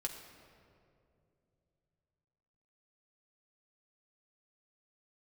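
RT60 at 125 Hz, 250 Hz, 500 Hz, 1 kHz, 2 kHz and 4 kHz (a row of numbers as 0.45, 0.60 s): 4.2, 3.3, 3.1, 2.2, 1.8, 1.4 s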